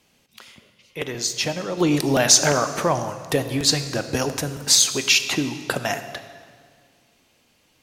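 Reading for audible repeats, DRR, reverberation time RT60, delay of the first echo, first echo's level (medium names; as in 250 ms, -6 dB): no echo, 9.0 dB, 2.0 s, no echo, no echo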